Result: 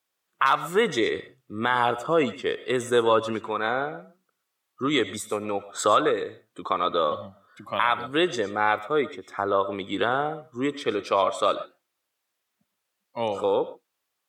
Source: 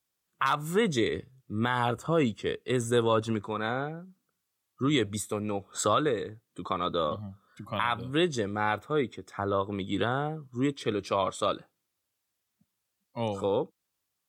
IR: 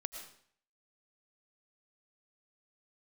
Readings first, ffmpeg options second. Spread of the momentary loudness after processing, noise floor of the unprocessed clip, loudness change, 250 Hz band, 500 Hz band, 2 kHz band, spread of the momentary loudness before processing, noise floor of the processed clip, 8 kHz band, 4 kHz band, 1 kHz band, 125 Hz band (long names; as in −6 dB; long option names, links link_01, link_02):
10 LU, −82 dBFS, +4.5 dB, +0.5 dB, +5.0 dB, +6.0 dB, 10 LU, −80 dBFS, +0.5 dB, +4.0 dB, +6.0 dB, −6.0 dB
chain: -filter_complex "[0:a]bass=frequency=250:gain=-14,treble=frequency=4000:gain=-6,asplit=2[link_01][link_02];[1:a]atrim=start_sample=2205,atrim=end_sample=6174[link_03];[link_02][link_03]afir=irnorm=-1:irlink=0,volume=0.5dB[link_04];[link_01][link_04]amix=inputs=2:normalize=0,volume=1dB"